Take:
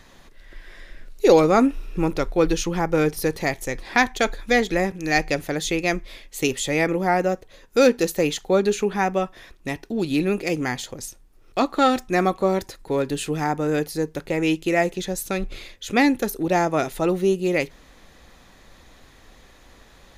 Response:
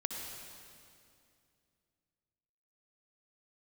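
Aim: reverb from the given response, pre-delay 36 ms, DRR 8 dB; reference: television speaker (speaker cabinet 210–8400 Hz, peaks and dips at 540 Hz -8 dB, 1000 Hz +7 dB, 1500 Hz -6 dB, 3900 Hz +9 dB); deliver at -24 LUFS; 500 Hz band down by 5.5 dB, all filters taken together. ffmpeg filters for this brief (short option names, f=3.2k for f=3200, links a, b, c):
-filter_complex "[0:a]equalizer=f=500:t=o:g=-3,asplit=2[a][b];[1:a]atrim=start_sample=2205,adelay=36[c];[b][c]afir=irnorm=-1:irlink=0,volume=-10dB[d];[a][d]amix=inputs=2:normalize=0,highpass=f=210:w=0.5412,highpass=f=210:w=1.3066,equalizer=f=540:t=q:w=4:g=-8,equalizer=f=1k:t=q:w=4:g=7,equalizer=f=1.5k:t=q:w=4:g=-6,equalizer=f=3.9k:t=q:w=4:g=9,lowpass=f=8.4k:w=0.5412,lowpass=f=8.4k:w=1.3066"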